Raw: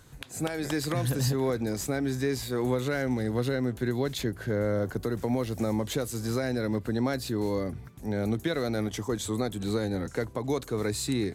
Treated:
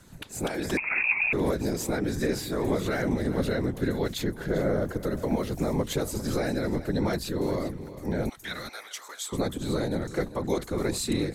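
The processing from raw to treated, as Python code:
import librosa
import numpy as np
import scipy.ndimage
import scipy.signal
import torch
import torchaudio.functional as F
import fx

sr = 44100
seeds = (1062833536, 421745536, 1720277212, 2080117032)

y = fx.bessel_highpass(x, sr, hz=1200.0, order=4, at=(8.29, 9.33))
y = fx.whisperise(y, sr, seeds[0])
y = y + 10.0 ** (-14.5 / 20.0) * np.pad(y, (int(397 * sr / 1000.0), 0))[:len(y)]
y = fx.freq_invert(y, sr, carrier_hz=2600, at=(0.77, 1.33))
y = F.gain(torch.from_numpy(y), 1.0).numpy()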